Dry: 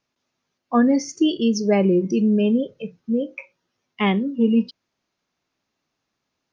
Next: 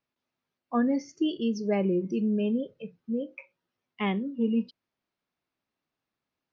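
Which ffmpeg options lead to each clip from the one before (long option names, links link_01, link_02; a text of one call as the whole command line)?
ffmpeg -i in.wav -af "lowpass=4100,volume=-8.5dB" out.wav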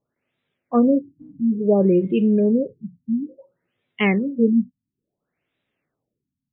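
ffmpeg -i in.wav -af "equalizer=frequency=125:width_type=o:width=1:gain=6,equalizer=frequency=500:width_type=o:width=1:gain=6,equalizer=frequency=1000:width_type=o:width=1:gain=-6,equalizer=frequency=2000:width_type=o:width=1:gain=6,equalizer=frequency=4000:width_type=o:width=1:gain=7,afftfilt=real='re*lt(b*sr/1024,270*pow(4000/270,0.5+0.5*sin(2*PI*0.58*pts/sr)))':imag='im*lt(b*sr/1024,270*pow(4000/270,0.5+0.5*sin(2*PI*0.58*pts/sr)))':win_size=1024:overlap=0.75,volume=6.5dB" out.wav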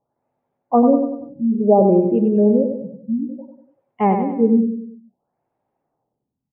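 ffmpeg -i in.wav -af "lowpass=frequency=850:width_type=q:width=4.9,aecho=1:1:96|192|288|384|480:0.473|0.218|0.1|0.0461|0.0212" out.wav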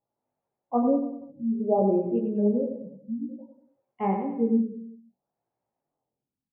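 ffmpeg -i in.wav -af "flanger=delay=17:depth=5.4:speed=0.9,volume=-7dB" out.wav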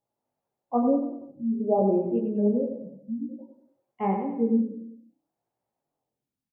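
ffmpeg -i in.wav -filter_complex "[0:a]asplit=4[link_01][link_02][link_03][link_04];[link_02]adelay=88,afreqshift=31,volume=-22dB[link_05];[link_03]adelay=176,afreqshift=62,volume=-29.5dB[link_06];[link_04]adelay=264,afreqshift=93,volume=-37.1dB[link_07];[link_01][link_05][link_06][link_07]amix=inputs=4:normalize=0" out.wav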